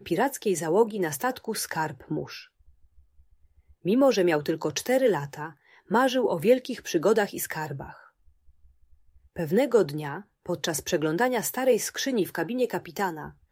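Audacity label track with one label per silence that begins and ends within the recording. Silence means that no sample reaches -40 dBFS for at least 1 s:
2.430000	3.850000	silence
7.990000	9.360000	silence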